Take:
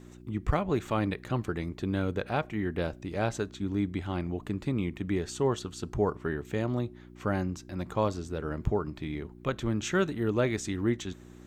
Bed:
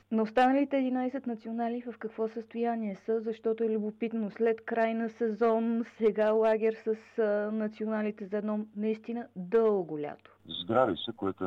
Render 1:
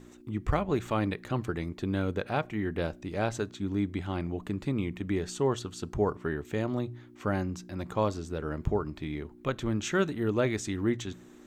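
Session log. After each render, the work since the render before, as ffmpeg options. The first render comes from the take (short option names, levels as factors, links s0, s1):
-af "bandreject=f=60:t=h:w=4,bandreject=f=120:t=h:w=4,bandreject=f=180:t=h:w=4"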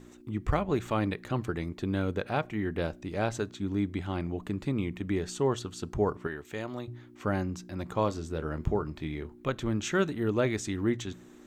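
-filter_complex "[0:a]asettb=1/sr,asplit=3[s0][s1][s2];[s0]atrim=end=6.274[s3];[s1]atrim=start=6.27:end=6.88,asetpts=PTS-STARTPTS,afade=t=in:d=0.004:c=qsin,afade=t=out:st=0.606:d=0.004:c=qsin,lowshelf=f=500:g=-9.5[s4];[s2]atrim=start=6.876[s5];[s3][s4]acrossfade=d=0.004:c1=hsin:c2=qsin[s6];[s6][s5]acrossfade=d=0.004:c1=qsin:c2=hsin,asettb=1/sr,asplit=3[s7][s8][s9];[s7]atrim=end=7.934[s10];[s8]atrim=start=7.93:end=9.38,asetpts=PTS-STARTPTS,afade=t=in:d=0.004:c=qsin,afade=t=out:st=1.446:d=0.004:c=qsin,asplit=2[s11][s12];[s12]adelay=25,volume=0.251[s13];[s11][s13]amix=inputs=2:normalize=0,atrim=end_sample=63945[s14];[s9]atrim=start=9.376[s15];[s10][s14]acrossfade=d=0.004:c1=hsin:c2=qsin[s16];[s16][s15]acrossfade=d=0.004:c1=qsin:c2=hsin"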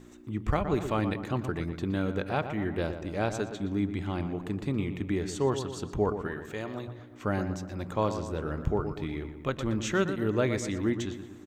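-filter_complex "[0:a]asplit=2[s0][s1];[s1]adelay=120,lowpass=f=2600:p=1,volume=0.355,asplit=2[s2][s3];[s3]adelay=120,lowpass=f=2600:p=1,volume=0.55,asplit=2[s4][s5];[s5]adelay=120,lowpass=f=2600:p=1,volume=0.55,asplit=2[s6][s7];[s7]adelay=120,lowpass=f=2600:p=1,volume=0.55,asplit=2[s8][s9];[s9]adelay=120,lowpass=f=2600:p=1,volume=0.55,asplit=2[s10][s11];[s11]adelay=120,lowpass=f=2600:p=1,volume=0.55[s12];[s0][s2][s4][s6][s8][s10][s12]amix=inputs=7:normalize=0"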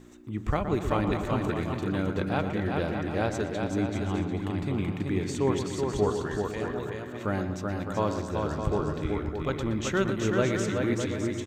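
-af "aecho=1:1:380|608|744.8|826.9|876.1:0.631|0.398|0.251|0.158|0.1"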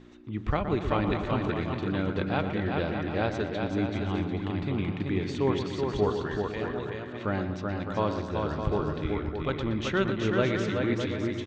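-af "lowpass=f=4100:w=0.5412,lowpass=f=4100:w=1.3066,aemphasis=mode=production:type=50fm"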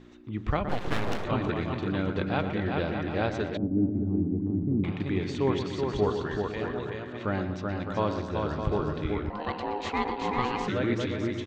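-filter_complex "[0:a]asettb=1/sr,asplit=3[s0][s1][s2];[s0]atrim=end=0.694[s3];[s1]atrim=start=0.69:end=1.25,asetpts=PTS-STARTPTS,afade=t=in:d=0.004:c=qsin,afade=t=out:st=0.556:d=0.004:c=qsin,aeval=exprs='abs(val(0))':c=same[s4];[s2]atrim=start=1.246[s5];[s3][s4]acrossfade=d=0.004:c1=hsin:c2=qsin[s6];[s6][s5]acrossfade=d=0.004:c1=qsin:c2=hsin,asettb=1/sr,asplit=3[s7][s8][s9];[s7]atrim=end=3.574[s10];[s8]atrim=start=3.57:end=4.84,asetpts=PTS-STARTPTS,afade=t=in:d=0.004:c=qsin,afade=t=out:st=1.266:d=0.004:c=qsin,lowpass=f=280:t=q:w=1.8[s11];[s9]atrim=start=4.836[s12];[s10][s11]acrossfade=d=0.004:c1=hsin:c2=qsin[s13];[s13][s12]acrossfade=d=0.004:c1=qsin:c2=hsin,asettb=1/sr,asplit=3[s14][s15][s16];[s14]atrim=end=9.304[s17];[s15]atrim=start=9.3:end=10.68,asetpts=PTS-STARTPTS,afade=t=in:d=0.004:c=qsin,afade=t=out:st=1.376:d=0.004:c=qsin,aeval=exprs='val(0)*sin(2*PI*620*n/s)':c=same[s18];[s16]atrim=start=10.676[s19];[s17][s18]acrossfade=d=0.004:c1=hsin:c2=qsin[s20];[s20][s19]acrossfade=d=0.004:c1=qsin:c2=hsin"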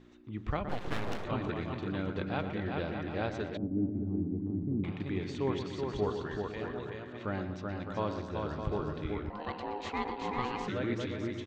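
-af "volume=0.501"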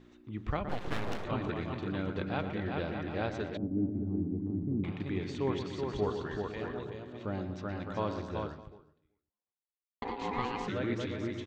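-filter_complex "[0:a]asettb=1/sr,asplit=3[s0][s1][s2];[s0]atrim=end=6.834[s3];[s1]atrim=start=6.83:end=7.57,asetpts=PTS-STARTPTS,afade=t=in:d=0.004:c=qsin,afade=t=out:st=0.736:d=0.004:c=qsin,equalizer=f=1700:t=o:w=1.3:g=-7.5[s4];[s2]atrim=start=7.566[s5];[s3][s4]acrossfade=d=0.004:c1=hsin:c2=qsin[s6];[s6][s5]acrossfade=d=0.004:c1=qsin:c2=hsin,asplit=2[s7][s8];[s7]atrim=end=10.02,asetpts=PTS-STARTPTS,afade=t=out:st=8.42:d=1.6:c=exp[s9];[s8]atrim=start=10.02,asetpts=PTS-STARTPTS,afade=t=in:d=0.004:c=hsin[s10];[s9][s10]concat=n=2:v=0:a=1"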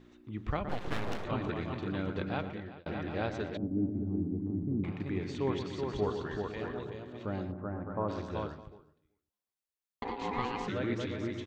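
-filter_complex "[0:a]asettb=1/sr,asplit=3[s0][s1][s2];[s0]atrim=end=4.184[s3];[s1]atrim=start=4.18:end=5.3,asetpts=PTS-STARTPTS,afade=t=in:d=0.004:c=qsin,afade=t=out:st=1.116:d=0.004:c=qsin,equalizer=f=3400:w=2.7:g=-6.5[s4];[s2]atrim=start=5.296[s5];[s3][s4]acrossfade=d=0.004:c1=hsin:c2=qsin[s6];[s6][s5]acrossfade=d=0.004:c1=qsin:c2=hsin,asplit=3[s7][s8][s9];[s7]afade=t=out:st=7.51:d=0.02[s10];[s8]lowpass=f=1400:w=0.5412,lowpass=f=1400:w=1.3066,afade=t=in:st=7.51:d=0.02,afade=t=out:st=8.08:d=0.02[s11];[s9]afade=t=in:st=8.08:d=0.02[s12];[s10][s11][s12]amix=inputs=3:normalize=0,asplit=2[s13][s14];[s13]atrim=end=2.86,asetpts=PTS-STARTPTS,afade=t=out:st=2.32:d=0.54[s15];[s14]atrim=start=2.86,asetpts=PTS-STARTPTS,afade=t=in:d=0.004:c=hsin[s16];[s15][s16]concat=n=2:v=0:a=1"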